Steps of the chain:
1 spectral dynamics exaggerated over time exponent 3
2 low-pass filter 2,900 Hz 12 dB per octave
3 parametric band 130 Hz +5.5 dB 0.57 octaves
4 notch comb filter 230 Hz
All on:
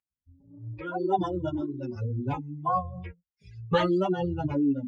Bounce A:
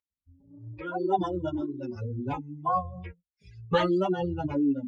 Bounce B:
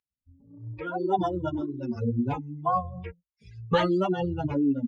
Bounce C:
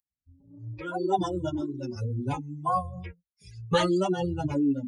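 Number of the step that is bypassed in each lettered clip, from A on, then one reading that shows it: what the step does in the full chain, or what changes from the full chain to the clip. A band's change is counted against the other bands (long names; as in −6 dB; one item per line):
3, 125 Hz band −3.0 dB
4, change in crest factor −1.5 dB
2, 4 kHz band +4.5 dB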